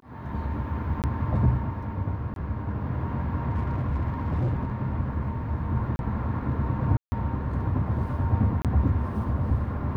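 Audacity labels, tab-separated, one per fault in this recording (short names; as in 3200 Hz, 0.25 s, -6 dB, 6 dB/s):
1.020000	1.040000	gap 18 ms
2.340000	2.360000	gap 22 ms
3.510000	4.710000	clipped -22 dBFS
5.960000	5.990000	gap 31 ms
6.970000	7.120000	gap 0.15 s
8.620000	8.650000	gap 27 ms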